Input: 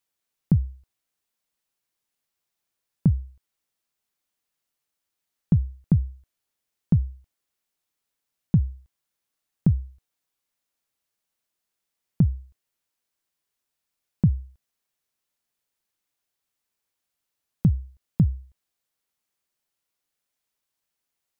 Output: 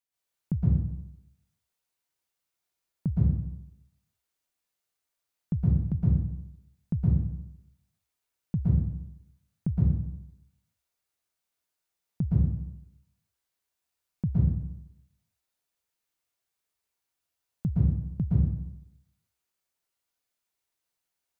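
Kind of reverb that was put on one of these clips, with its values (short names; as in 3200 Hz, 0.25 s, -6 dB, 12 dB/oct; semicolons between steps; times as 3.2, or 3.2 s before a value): plate-style reverb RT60 0.83 s, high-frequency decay 0.9×, pre-delay 0.105 s, DRR -8 dB; gain -10 dB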